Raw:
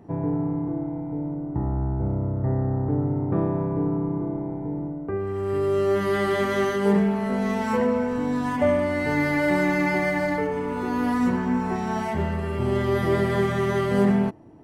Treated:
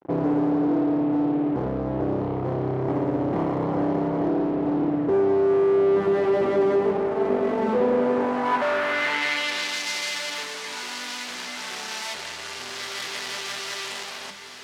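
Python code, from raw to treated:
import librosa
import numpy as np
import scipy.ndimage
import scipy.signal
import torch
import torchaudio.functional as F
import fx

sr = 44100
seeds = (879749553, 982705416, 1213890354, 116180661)

y = fx.lower_of_two(x, sr, delay_ms=0.96, at=(2.2, 4.28))
y = fx.fuzz(y, sr, gain_db=35.0, gate_db=-44.0)
y = fx.hum_notches(y, sr, base_hz=50, count=4)
y = fx.echo_diffused(y, sr, ms=1558, feedback_pct=56, wet_db=-10.0)
y = fx.filter_sweep_bandpass(y, sr, from_hz=410.0, to_hz=5100.0, start_s=7.93, end_s=9.8, q=1.1)
y = y * librosa.db_to_amplitude(-4.0)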